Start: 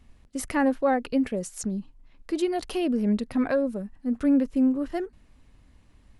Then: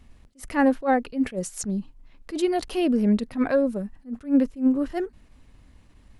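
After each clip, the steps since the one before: attack slew limiter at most 240 dB/s; gain +3.5 dB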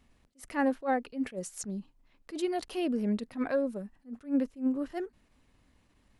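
low shelf 120 Hz -10 dB; gain -7 dB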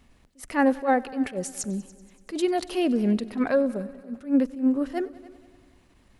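multi-head echo 95 ms, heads all three, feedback 44%, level -23 dB; gain +7 dB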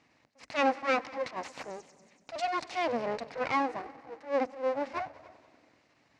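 full-wave rectifier; speaker cabinet 190–6100 Hz, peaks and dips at 190 Hz -8 dB, 390 Hz -9 dB, 1400 Hz -3 dB, 2100 Hz +3 dB, 3300 Hz -7 dB

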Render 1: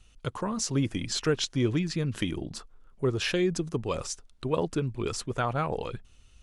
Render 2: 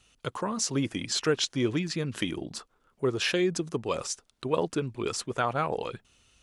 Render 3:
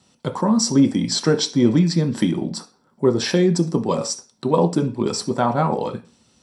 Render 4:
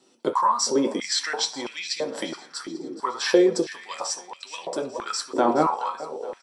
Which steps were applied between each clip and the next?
HPF 250 Hz 6 dB/oct; gain +2 dB
reverb RT60 0.35 s, pre-delay 3 ms, DRR 4 dB
flange 0.62 Hz, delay 7.3 ms, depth 6.1 ms, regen +56%; feedback echo 0.422 s, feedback 56%, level -16 dB; stepped high-pass 3 Hz 340–2500 Hz; gain +1 dB

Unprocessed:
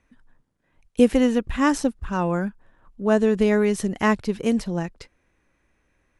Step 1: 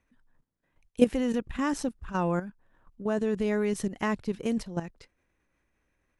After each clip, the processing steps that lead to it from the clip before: level quantiser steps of 12 dB; gain -2.5 dB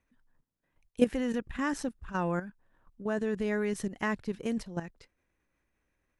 dynamic EQ 1700 Hz, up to +6 dB, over -51 dBFS, Q 2.7; gain -3.5 dB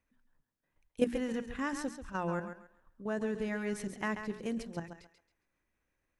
notches 60/120/180/240/300/360/420 Hz; on a send: thinning echo 0.136 s, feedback 26%, high-pass 320 Hz, level -8 dB; on the sum: gain -3.5 dB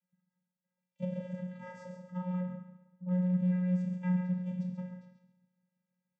rattling part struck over -39 dBFS, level -39 dBFS; two-slope reverb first 0.83 s, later 2.7 s, from -27 dB, DRR 1 dB; vocoder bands 16, square 181 Hz

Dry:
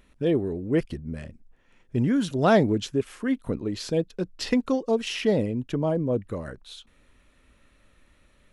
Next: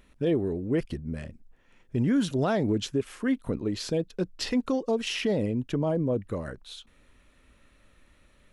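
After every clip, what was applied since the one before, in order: limiter -17.5 dBFS, peak gain reduction 9.5 dB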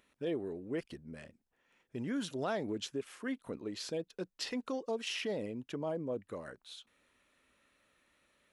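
HPF 440 Hz 6 dB/oct; gain -6.5 dB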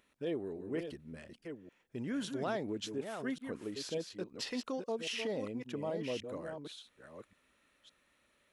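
reverse delay 0.564 s, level -7 dB; gain -1 dB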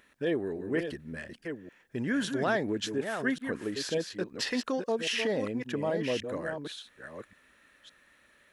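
bell 1700 Hz +10 dB 0.33 oct; gain +7 dB

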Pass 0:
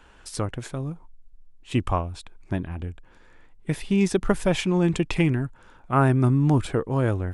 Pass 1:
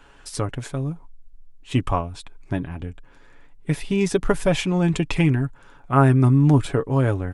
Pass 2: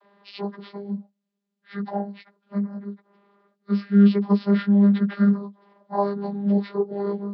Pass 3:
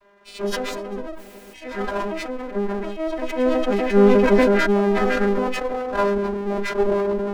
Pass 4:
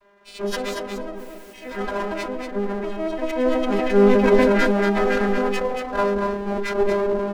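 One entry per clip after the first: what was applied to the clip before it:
comb 7.1 ms, depth 43%; gain +1.5 dB
inharmonic rescaling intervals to 79%; high shelf 2700 Hz +8.5 dB; vocoder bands 32, saw 201 Hz
minimum comb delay 3 ms; echoes that change speed 0.254 s, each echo +4 st, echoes 2, each echo -6 dB; sustainer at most 23 dB/s; gain +3.5 dB
echo 0.232 s -6 dB; gain -1 dB

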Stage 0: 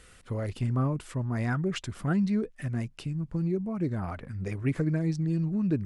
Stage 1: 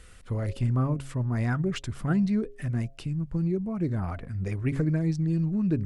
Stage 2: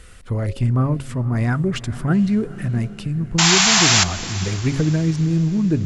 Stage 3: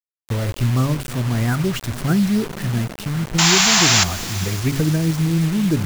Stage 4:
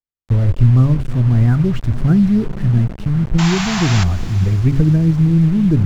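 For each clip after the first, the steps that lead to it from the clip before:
de-esser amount 75%; low shelf 92 Hz +9 dB; de-hum 136.4 Hz, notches 5
painted sound noise, 3.38–4.04, 640–7600 Hz -22 dBFS; diffused feedback echo 0.473 s, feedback 48%, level -16 dB; gain +7 dB
bit-crush 5-bit
RIAA curve playback; gain -3.5 dB

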